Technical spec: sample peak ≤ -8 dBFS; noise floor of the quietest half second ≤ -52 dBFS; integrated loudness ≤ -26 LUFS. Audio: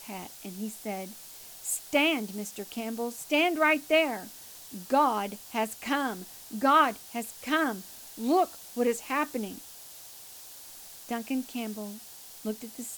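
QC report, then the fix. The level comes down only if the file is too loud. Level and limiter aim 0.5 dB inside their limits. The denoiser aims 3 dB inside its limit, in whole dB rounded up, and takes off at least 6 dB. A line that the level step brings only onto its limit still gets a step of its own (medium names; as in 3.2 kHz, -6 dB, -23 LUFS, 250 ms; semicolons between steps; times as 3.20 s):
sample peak -10.5 dBFS: pass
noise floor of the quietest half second -47 dBFS: fail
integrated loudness -29.0 LUFS: pass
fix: noise reduction 8 dB, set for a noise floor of -47 dBFS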